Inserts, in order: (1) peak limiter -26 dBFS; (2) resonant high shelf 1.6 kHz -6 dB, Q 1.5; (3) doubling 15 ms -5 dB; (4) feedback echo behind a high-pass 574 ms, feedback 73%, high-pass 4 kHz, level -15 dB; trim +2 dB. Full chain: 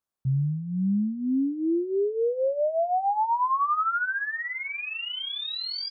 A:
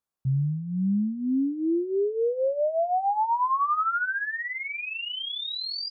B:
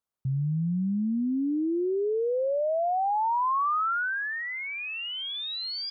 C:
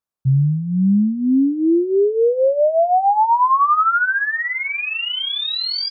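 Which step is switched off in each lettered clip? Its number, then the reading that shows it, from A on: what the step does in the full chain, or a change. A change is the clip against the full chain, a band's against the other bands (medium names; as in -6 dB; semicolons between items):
4, echo-to-direct -25.0 dB to none; 3, crest factor change -2.5 dB; 1, mean gain reduction 9.5 dB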